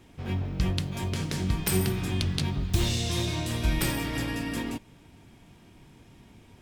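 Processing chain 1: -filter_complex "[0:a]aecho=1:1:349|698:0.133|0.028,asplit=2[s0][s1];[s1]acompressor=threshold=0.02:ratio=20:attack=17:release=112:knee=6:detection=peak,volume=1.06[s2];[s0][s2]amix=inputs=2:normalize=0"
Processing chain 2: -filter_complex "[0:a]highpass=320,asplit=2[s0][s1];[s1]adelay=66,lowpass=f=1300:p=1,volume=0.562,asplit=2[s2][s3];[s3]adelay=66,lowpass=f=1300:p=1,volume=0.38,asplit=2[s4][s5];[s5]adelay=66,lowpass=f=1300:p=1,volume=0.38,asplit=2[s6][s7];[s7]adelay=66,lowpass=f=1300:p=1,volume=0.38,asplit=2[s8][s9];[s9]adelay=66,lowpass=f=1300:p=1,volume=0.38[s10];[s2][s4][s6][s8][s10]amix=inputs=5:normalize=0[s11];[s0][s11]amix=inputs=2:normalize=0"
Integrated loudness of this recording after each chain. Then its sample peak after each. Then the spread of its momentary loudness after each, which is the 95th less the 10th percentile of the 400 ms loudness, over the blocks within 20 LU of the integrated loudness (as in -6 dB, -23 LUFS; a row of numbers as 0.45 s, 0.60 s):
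-26.0 LUFS, -32.5 LUFS; -6.0 dBFS, -9.5 dBFS; 6 LU, 10 LU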